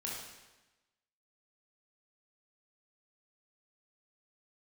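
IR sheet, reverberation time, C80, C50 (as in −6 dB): 1.1 s, 3.5 dB, 0.0 dB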